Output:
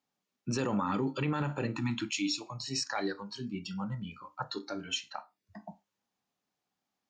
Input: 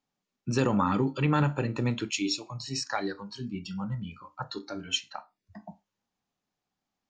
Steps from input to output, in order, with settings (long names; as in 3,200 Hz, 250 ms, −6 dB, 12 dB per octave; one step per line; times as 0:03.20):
high-pass filter 170 Hz 6 dB per octave
brickwall limiter −22 dBFS, peak gain reduction 8.5 dB
time-frequency box erased 0:01.76–0:02.41, 350–750 Hz